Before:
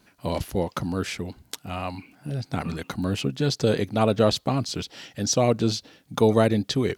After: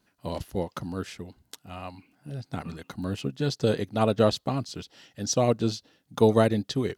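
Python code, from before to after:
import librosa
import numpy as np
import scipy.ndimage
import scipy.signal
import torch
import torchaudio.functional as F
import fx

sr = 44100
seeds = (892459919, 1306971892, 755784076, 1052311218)

y = fx.notch(x, sr, hz=2300.0, q=14.0)
y = fx.upward_expand(y, sr, threshold_db=-35.0, expansion=1.5)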